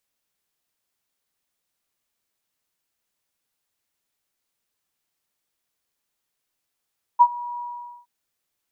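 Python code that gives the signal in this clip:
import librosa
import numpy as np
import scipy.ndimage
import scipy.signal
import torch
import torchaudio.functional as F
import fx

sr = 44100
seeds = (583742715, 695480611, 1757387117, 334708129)

y = fx.adsr_tone(sr, wave='sine', hz=964.0, attack_ms=23.0, decay_ms=58.0, sustain_db=-21.5, held_s=0.4, release_ms=469.0, level_db=-7.0)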